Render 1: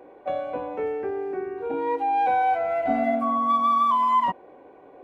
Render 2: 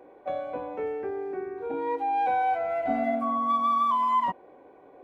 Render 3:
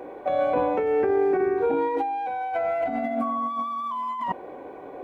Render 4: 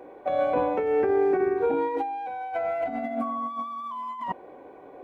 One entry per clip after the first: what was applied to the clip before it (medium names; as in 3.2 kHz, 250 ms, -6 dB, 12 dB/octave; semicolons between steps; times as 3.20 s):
band-stop 2.8 kHz, Q 27; trim -3.5 dB
compressor with a negative ratio -33 dBFS, ratio -1; trim +7.5 dB
upward expansion 1.5:1, over -33 dBFS